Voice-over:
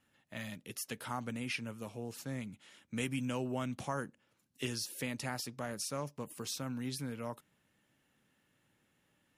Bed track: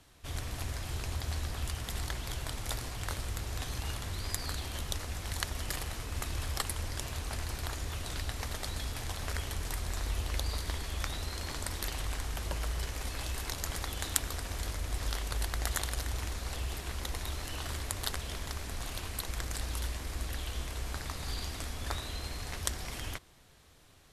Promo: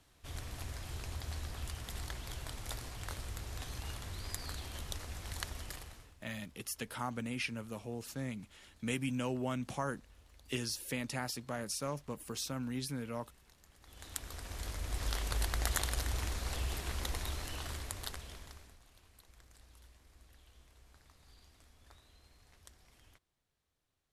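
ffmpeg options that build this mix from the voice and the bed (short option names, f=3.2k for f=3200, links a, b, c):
-filter_complex "[0:a]adelay=5900,volume=0.5dB[a];[1:a]volume=21dB,afade=t=out:st=5.48:d=0.69:silence=0.0841395,afade=t=in:st=13.8:d=1.49:silence=0.0446684,afade=t=out:st=17.04:d=1.76:silence=0.0630957[b];[a][b]amix=inputs=2:normalize=0"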